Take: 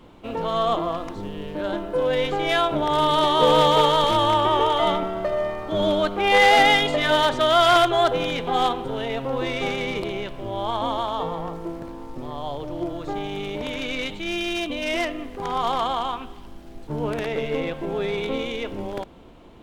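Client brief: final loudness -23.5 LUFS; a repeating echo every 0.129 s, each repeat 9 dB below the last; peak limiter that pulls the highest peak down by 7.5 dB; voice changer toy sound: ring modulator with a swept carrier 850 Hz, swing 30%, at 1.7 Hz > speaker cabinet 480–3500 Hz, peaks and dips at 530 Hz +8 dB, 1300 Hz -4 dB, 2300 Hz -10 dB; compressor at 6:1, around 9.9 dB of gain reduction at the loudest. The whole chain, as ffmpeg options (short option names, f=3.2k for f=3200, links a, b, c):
-af "acompressor=threshold=-23dB:ratio=6,alimiter=limit=-21dB:level=0:latency=1,aecho=1:1:129|258|387|516:0.355|0.124|0.0435|0.0152,aeval=exprs='val(0)*sin(2*PI*850*n/s+850*0.3/1.7*sin(2*PI*1.7*n/s))':c=same,highpass=480,equalizer=f=530:t=q:w=4:g=8,equalizer=f=1.3k:t=q:w=4:g=-4,equalizer=f=2.3k:t=q:w=4:g=-10,lowpass=f=3.5k:w=0.5412,lowpass=f=3.5k:w=1.3066,volume=11dB"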